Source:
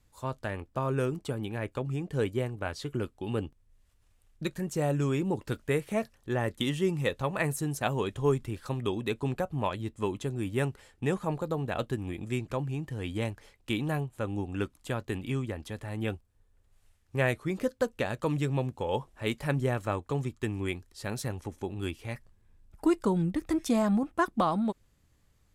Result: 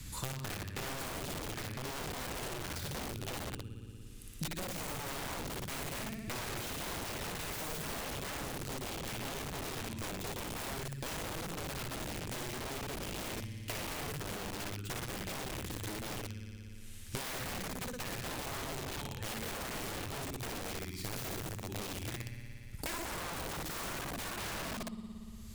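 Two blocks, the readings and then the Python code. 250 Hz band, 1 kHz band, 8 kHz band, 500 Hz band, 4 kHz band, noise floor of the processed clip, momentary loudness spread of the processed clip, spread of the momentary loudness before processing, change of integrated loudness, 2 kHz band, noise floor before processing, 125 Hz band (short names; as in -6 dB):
-12.5 dB, -6.5 dB, +5.0 dB, -12.0 dB, +1.5 dB, -47 dBFS, 3 LU, 8 LU, -8.0 dB, -4.0 dB, -67 dBFS, -10.5 dB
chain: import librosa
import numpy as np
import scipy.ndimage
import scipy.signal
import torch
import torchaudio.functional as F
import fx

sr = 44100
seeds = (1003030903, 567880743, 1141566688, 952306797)

p1 = fx.tracing_dist(x, sr, depth_ms=0.25)
p2 = fx.tone_stack(p1, sr, knobs='6-0-2')
p3 = p2 + fx.room_flutter(p2, sr, wall_m=10.0, rt60_s=1.2, dry=0)
p4 = (np.mod(10.0 ** (46.0 / 20.0) * p3 + 1.0, 2.0) - 1.0) / 10.0 ** (46.0 / 20.0)
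p5 = fx.low_shelf(p4, sr, hz=130.0, db=4.0)
p6 = fx.band_squash(p5, sr, depth_pct=100)
y = p6 * 10.0 ** (9.5 / 20.0)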